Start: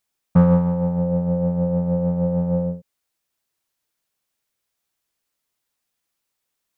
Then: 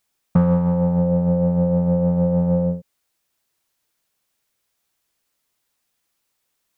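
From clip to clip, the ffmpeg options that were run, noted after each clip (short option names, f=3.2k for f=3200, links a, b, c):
-af "acompressor=threshold=-20dB:ratio=3,volume=5dB"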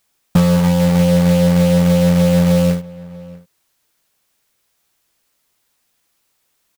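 -filter_complex "[0:a]asplit=2[a][b];[b]alimiter=limit=-16.5dB:level=0:latency=1:release=89,volume=2dB[c];[a][c]amix=inputs=2:normalize=0,acrusher=bits=3:mode=log:mix=0:aa=0.000001,asplit=2[d][e];[e]adelay=641.4,volume=-20dB,highshelf=f=4k:g=-14.4[f];[d][f]amix=inputs=2:normalize=0"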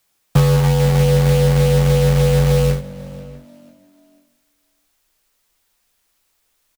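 -filter_complex "[0:a]asplit=4[a][b][c][d];[b]adelay=490,afreqshift=49,volume=-22.5dB[e];[c]adelay=980,afreqshift=98,volume=-31.1dB[f];[d]adelay=1470,afreqshift=147,volume=-39.8dB[g];[a][e][f][g]amix=inputs=4:normalize=0,asubboost=boost=4.5:cutoff=79,afreqshift=-32"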